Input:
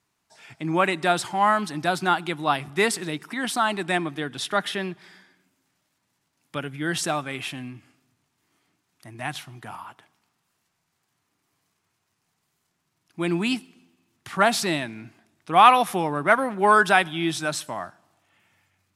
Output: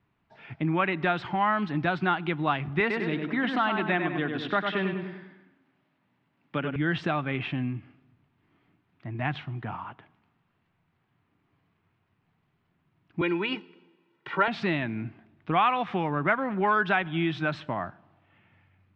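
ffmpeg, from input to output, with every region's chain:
ffmpeg -i in.wav -filter_complex "[0:a]asettb=1/sr,asplit=3[link_01][link_02][link_03];[link_01]atrim=end=2.804[link_04];[link_02]atrim=start=2.8:end=6.76,asetpts=PTS-STARTPTS,afade=type=in:duration=0.004:curve=qsin,afade=type=out:start_time=3.956:duration=0.004:curve=qsin,highpass=160,asplit=2[link_05][link_06];[link_06]adelay=99,lowpass=frequency=4000:poles=1,volume=-6dB,asplit=2[link_07][link_08];[link_08]adelay=99,lowpass=frequency=4000:poles=1,volume=0.47,asplit=2[link_09][link_10];[link_10]adelay=99,lowpass=frequency=4000:poles=1,volume=0.47,asplit=2[link_11][link_12];[link_12]adelay=99,lowpass=frequency=4000:poles=1,volume=0.47,asplit=2[link_13][link_14];[link_14]adelay=99,lowpass=frequency=4000:poles=1,volume=0.47,asplit=2[link_15][link_16];[link_16]adelay=99,lowpass=frequency=4000:poles=1,volume=0.47[link_17];[link_05][link_07][link_09][link_11][link_13][link_15][link_17]amix=inputs=7:normalize=0,atrim=end_sample=174636[link_18];[link_03]atrim=start=6.756[link_19];[link_04][link_18]acrossfade=duration=0.004:curve1=hsin:curve2=qsin[link_20];[link_20][link_19]acrossfade=duration=0.004:curve1=qsin:curve2=hsin,asettb=1/sr,asplit=3[link_21][link_22][link_23];[link_21]atrim=end=13.214[link_24];[link_22]atrim=start=13.21:end=14.48,asetpts=PTS-STARTPTS,afade=type=in:duration=0.004:curve=qsin,afade=type=out:start_time=1.266:duration=0.004:curve=qsin,highpass=frequency=210:width=0.5412,highpass=frequency=210:width=1.3066,aecho=1:1:2.1:0.86,atrim=end_sample=56007[link_25];[link_23]atrim=start=14.476[link_26];[link_24][link_25]acrossfade=duration=0.004:curve1=hsin:curve2=qsin[link_27];[link_27][link_26]acrossfade=duration=0.004:curve1=qsin:curve2=hsin,lowpass=frequency=3000:width=0.5412,lowpass=frequency=3000:width=1.3066,acrossover=split=1100|2200[link_28][link_29][link_30];[link_28]acompressor=threshold=-31dB:ratio=4[link_31];[link_29]acompressor=threshold=-27dB:ratio=4[link_32];[link_30]acompressor=threshold=-35dB:ratio=4[link_33];[link_31][link_32][link_33]amix=inputs=3:normalize=0,lowshelf=frequency=300:gain=10.5" out.wav

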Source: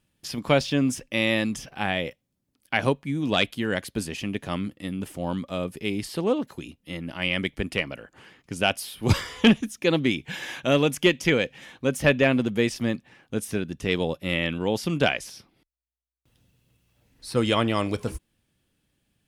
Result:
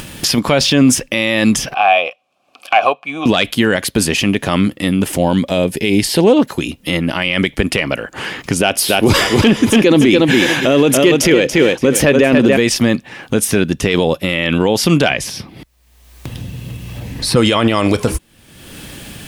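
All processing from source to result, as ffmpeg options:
ffmpeg -i in.wav -filter_complex "[0:a]asettb=1/sr,asplit=3[link_01][link_02][link_03];[link_01]atrim=end=1.744[link_04];[link_02]atrim=start=1.74:end=3.26,asetpts=PTS-STARTPTS,afade=type=in:duration=0.004:curve=qsin,afade=type=out:start_time=1.516:duration=0.004:curve=qsin,tiltshelf=frequency=630:gain=-5.5,acontrast=39,asplit=3[link_05][link_06][link_07];[link_05]bandpass=frequency=730:width_type=q:width=8,volume=0dB[link_08];[link_06]bandpass=frequency=1090:width_type=q:width=8,volume=-6dB[link_09];[link_07]bandpass=frequency=2440:width_type=q:width=8,volume=-9dB[link_10];[link_08][link_09][link_10]amix=inputs=3:normalize=0[link_11];[link_03]atrim=start=3.256[link_12];[link_04][link_11]acrossfade=duration=0.004:curve1=hsin:curve2=qsin[link_13];[link_13][link_12]acrossfade=duration=0.004:curve1=qsin:curve2=hsin,asettb=1/sr,asplit=3[link_14][link_15][link_16];[link_14]atrim=end=5.134[link_17];[link_15]atrim=start=5.13:end=6.37,asetpts=PTS-STARTPTS,afade=type=in:duration=0.004:curve=qsin,afade=type=out:start_time=1.236:duration=0.004:curve=qsin,equalizer=frequency=1200:width_type=o:width=0.21:gain=-14.5,acompressor=mode=upward:threshold=-36dB:ratio=2.5:attack=3.2:release=140:knee=2.83:detection=peak[link_18];[link_16]atrim=start=6.366[link_19];[link_17][link_18]acrossfade=duration=0.004:curve1=hsin:curve2=qsin[link_20];[link_20][link_19]acrossfade=duration=0.004:curve1=qsin:curve2=hsin,asettb=1/sr,asplit=3[link_21][link_22][link_23];[link_21]atrim=end=8.604[link_24];[link_22]atrim=start=8.6:end=12.57,asetpts=PTS-STARTPTS,afade=type=in:duration=0.004:curve=qsin,afade=type=out:start_time=3.966:duration=0.004:curve=qsin,equalizer=frequency=360:width=1.2:gain=6.5,aecho=1:1:285|570|855:0.398|0.0955|0.0229,atrim=end_sample=175077[link_25];[link_23]atrim=start=12.566[link_26];[link_24][link_25]acrossfade=duration=0.004:curve1=hsin:curve2=qsin[link_27];[link_27][link_26]acrossfade=duration=0.004:curve1=qsin:curve2=hsin,asettb=1/sr,asplit=3[link_28][link_29][link_30];[link_28]atrim=end=15.104[link_31];[link_29]atrim=start=15.1:end=17.36,asetpts=PTS-STARTPTS,afade=type=in:duration=0.004:curve=qsin,afade=type=out:start_time=2.256:duration=0.004:curve=qsin,highpass=58,bass=frequency=250:gain=10,treble=frequency=4000:gain=-4,bandreject=frequency=1400:width=9.4[link_32];[link_30]atrim=start=17.356[link_33];[link_31][link_32]acrossfade=duration=0.004:curve1=hsin:curve2=qsin[link_34];[link_34][link_33]acrossfade=duration=0.004:curve1=qsin:curve2=hsin,lowshelf=frequency=240:gain=-4.5,acompressor=mode=upward:threshold=-32dB:ratio=2.5,alimiter=level_in=20dB:limit=-1dB:release=50:level=0:latency=1,volume=-1dB" out.wav

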